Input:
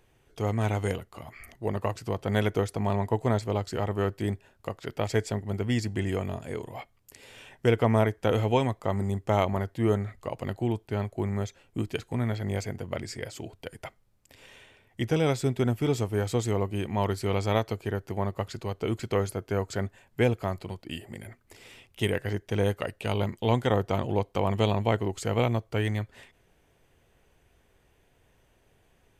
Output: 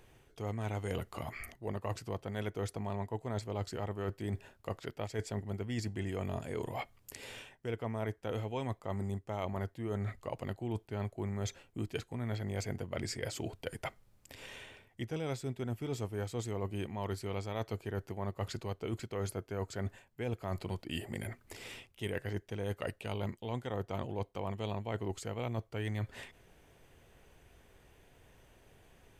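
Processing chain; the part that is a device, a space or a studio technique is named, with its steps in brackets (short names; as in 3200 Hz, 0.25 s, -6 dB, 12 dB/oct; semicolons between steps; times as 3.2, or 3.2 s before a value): compression on the reversed sound (reverse; compressor 10:1, threshold -37 dBFS, peak gain reduction 20 dB; reverse); gain +3 dB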